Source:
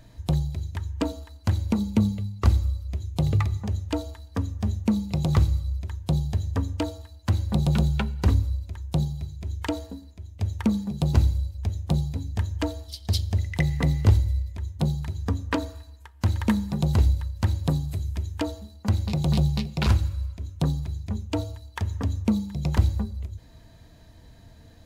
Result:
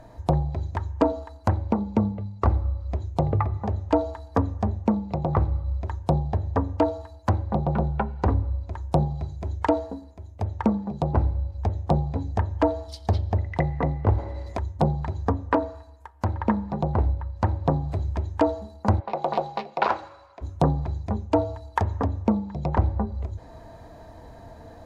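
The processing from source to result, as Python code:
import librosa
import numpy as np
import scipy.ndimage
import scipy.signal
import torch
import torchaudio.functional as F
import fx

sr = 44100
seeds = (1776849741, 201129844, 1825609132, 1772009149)

y = fx.spectral_comp(x, sr, ratio=2.0, at=(14.17, 14.57), fade=0.02)
y = fx.bandpass_edges(y, sr, low_hz=550.0, high_hz=fx.line((18.99, 2600.0), (20.41, 4400.0)), at=(18.99, 20.41), fade=0.02)
y = fx.env_lowpass_down(y, sr, base_hz=2100.0, full_db=-20.5)
y = fx.curve_eq(y, sr, hz=(170.0, 800.0, 3100.0, 5300.0), db=(0, 14, -6, -4))
y = fx.rider(y, sr, range_db=4, speed_s=0.5)
y = F.gain(torch.from_numpy(y), -1.0).numpy()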